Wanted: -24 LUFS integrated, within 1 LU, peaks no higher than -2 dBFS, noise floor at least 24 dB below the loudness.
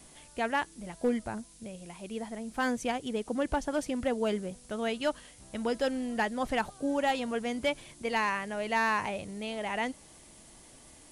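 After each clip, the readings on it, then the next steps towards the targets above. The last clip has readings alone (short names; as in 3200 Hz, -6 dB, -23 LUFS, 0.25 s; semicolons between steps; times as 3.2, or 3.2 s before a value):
clipped 0.2%; flat tops at -20.0 dBFS; noise floor -55 dBFS; noise floor target -57 dBFS; loudness -32.5 LUFS; peak -20.0 dBFS; loudness target -24.0 LUFS
-> clip repair -20 dBFS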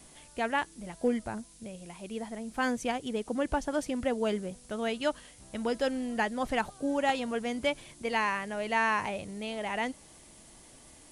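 clipped 0.0%; noise floor -55 dBFS; noise floor target -56 dBFS
-> noise print and reduce 6 dB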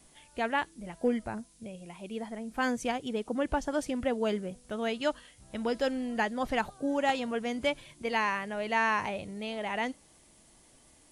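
noise floor -61 dBFS; loudness -32.0 LUFS; peak -12.0 dBFS; loudness target -24.0 LUFS
-> gain +8 dB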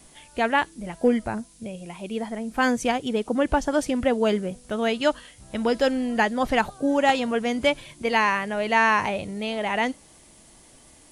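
loudness -24.0 LUFS; peak -4.0 dBFS; noise floor -53 dBFS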